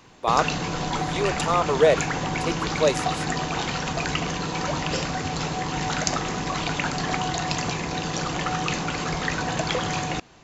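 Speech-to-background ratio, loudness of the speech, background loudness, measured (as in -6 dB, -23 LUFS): 2.0 dB, -24.5 LUFS, -26.5 LUFS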